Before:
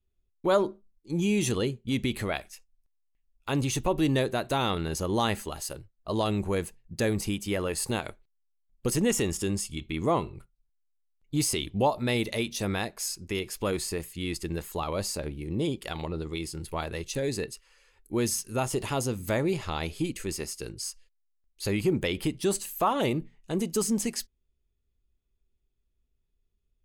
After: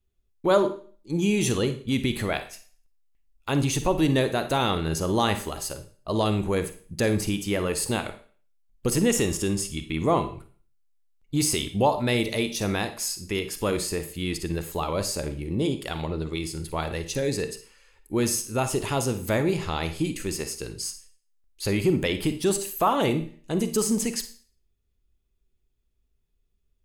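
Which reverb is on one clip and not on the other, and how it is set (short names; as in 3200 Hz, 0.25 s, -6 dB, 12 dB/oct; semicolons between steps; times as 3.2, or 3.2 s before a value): Schroeder reverb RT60 0.43 s, DRR 9.5 dB; gain +3 dB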